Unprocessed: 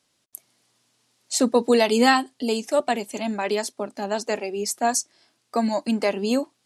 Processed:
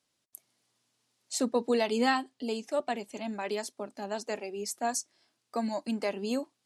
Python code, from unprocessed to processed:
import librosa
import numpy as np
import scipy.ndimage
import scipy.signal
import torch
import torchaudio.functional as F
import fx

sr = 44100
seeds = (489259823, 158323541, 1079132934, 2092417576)

y = fx.high_shelf(x, sr, hz=9500.0, db=-11.5, at=(1.45, 3.33))
y = y * 10.0 ** (-9.0 / 20.0)